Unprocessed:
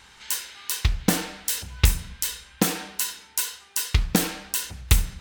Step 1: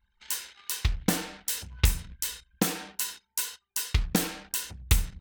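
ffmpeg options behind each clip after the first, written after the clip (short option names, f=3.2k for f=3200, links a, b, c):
-af "anlmdn=0.158,volume=-4.5dB"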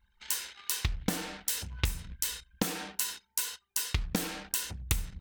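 -af "acompressor=threshold=-30dB:ratio=4,volume=2.5dB"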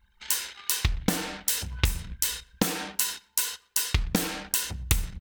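-filter_complex "[0:a]asplit=2[a][b];[b]adelay=122,lowpass=f=2.7k:p=1,volume=-23.5dB,asplit=2[c][d];[d]adelay=122,lowpass=f=2.7k:p=1,volume=0.36[e];[a][c][e]amix=inputs=3:normalize=0,volume=5.5dB"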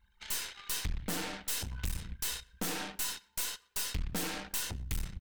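-af "aeval=exprs='(tanh(35.5*val(0)+0.75)-tanh(0.75))/35.5':c=same"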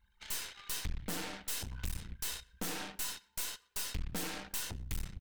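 -af "aeval=exprs='clip(val(0),-1,0.00398)':c=same,volume=-2.5dB"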